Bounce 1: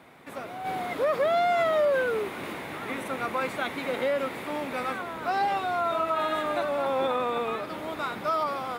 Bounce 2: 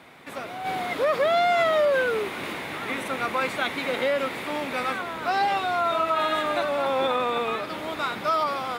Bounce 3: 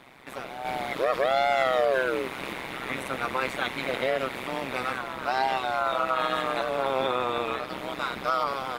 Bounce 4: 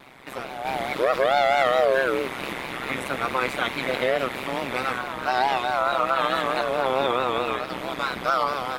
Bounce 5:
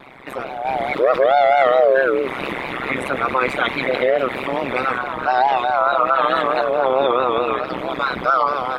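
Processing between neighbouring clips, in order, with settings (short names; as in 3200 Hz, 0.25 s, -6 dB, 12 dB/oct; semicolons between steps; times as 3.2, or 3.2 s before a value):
bell 3800 Hz +5.5 dB 2.5 oct; gain +1.5 dB
AM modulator 130 Hz, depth 90%; gain +1.5 dB
vibrato 4.6 Hz 87 cents; gain +3.5 dB
formant sharpening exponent 1.5; gain +6 dB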